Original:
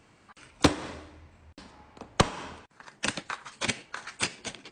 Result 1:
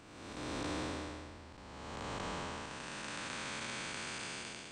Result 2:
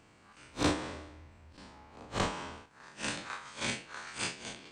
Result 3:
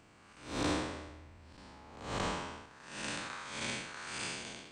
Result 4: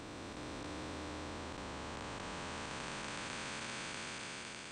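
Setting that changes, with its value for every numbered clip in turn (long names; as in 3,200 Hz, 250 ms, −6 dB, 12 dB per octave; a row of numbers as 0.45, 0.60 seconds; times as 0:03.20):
spectrum smeared in time, width: 629, 86, 215, 1,580 milliseconds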